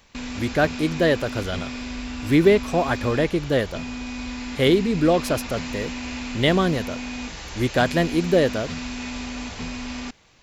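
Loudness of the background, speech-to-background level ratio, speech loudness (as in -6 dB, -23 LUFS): -32.0 LUFS, 10.0 dB, -22.0 LUFS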